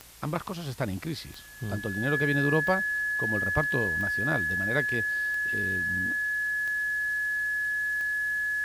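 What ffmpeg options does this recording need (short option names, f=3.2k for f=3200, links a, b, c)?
-af "adeclick=t=4,bandreject=f=57:t=h:w=4,bandreject=f=114:t=h:w=4,bandreject=f=171:t=h:w=4,bandreject=f=1.7k:w=30,afwtdn=0.0032"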